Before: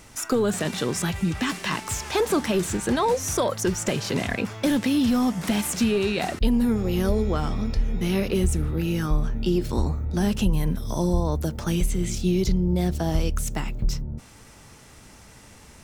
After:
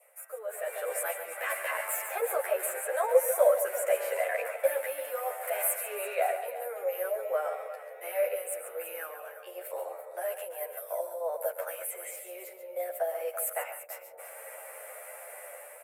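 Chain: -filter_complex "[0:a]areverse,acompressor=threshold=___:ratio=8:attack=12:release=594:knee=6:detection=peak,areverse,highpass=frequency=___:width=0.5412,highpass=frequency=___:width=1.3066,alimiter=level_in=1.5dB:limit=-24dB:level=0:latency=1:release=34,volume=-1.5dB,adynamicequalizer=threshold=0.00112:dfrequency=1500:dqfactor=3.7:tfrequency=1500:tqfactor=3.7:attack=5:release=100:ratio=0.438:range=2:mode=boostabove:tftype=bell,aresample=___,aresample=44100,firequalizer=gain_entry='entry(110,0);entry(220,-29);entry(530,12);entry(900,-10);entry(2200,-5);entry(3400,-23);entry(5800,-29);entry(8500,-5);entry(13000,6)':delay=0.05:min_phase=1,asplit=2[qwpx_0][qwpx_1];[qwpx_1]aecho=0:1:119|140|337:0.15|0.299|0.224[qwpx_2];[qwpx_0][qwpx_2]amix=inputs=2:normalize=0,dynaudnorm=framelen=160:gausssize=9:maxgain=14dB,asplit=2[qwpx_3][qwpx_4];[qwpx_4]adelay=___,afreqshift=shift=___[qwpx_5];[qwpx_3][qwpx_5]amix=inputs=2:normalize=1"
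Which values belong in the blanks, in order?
-30dB, 640, 640, 32000, 10.9, -0.41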